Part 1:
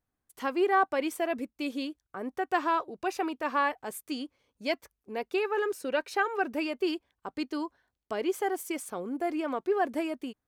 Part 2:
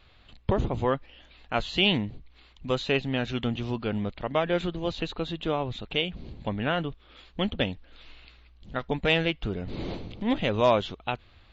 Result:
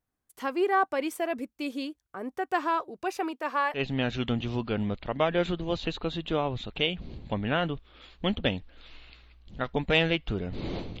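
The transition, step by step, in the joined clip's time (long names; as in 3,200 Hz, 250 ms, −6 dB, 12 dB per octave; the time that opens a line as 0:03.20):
part 1
0:03.31–0:03.85: high-pass filter 210 Hz → 630 Hz
0:03.79: continue with part 2 from 0:02.94, crossfade 0.12 s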